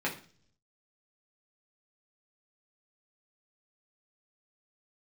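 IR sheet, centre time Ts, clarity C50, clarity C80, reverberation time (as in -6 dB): 17 ms, 11.0 dB, 16.0 dB, 0.45 s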